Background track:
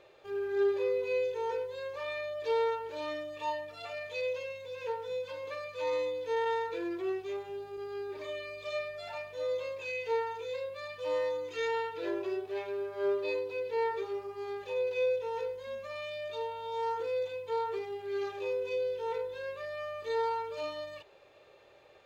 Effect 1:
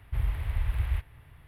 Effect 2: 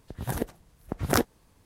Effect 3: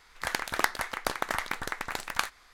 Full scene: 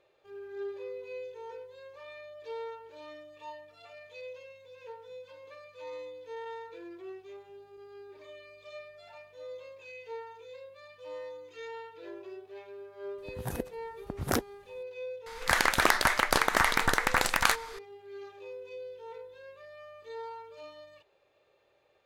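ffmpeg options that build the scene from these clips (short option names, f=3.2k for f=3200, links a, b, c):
-filter_complex "[0:a]volume=-10dB[a];[3:a]alimiter=level_in=18.5dB:limit=-1dB:release=50:level=0:latency=1[b];[2:a]atrim=end=1.65,asetpts=PTS-STARTPTS,volume=-5.5dB,afade=t=in:d=0.004:c=hsin,afade=t=out:st=1.646:d=0.004:c=hsin,adelay=13180[c];[b]atrim=end=2.53,asetpts=PTS-STARTPTS,volume=-7.5dB,afade=t=in:d=0.004:c=hsin,afade=t=out:st=2.526:d=0.004:c=hsin,adelay=15260[d];[a][c][d]amix=inputs=3:normalize=0"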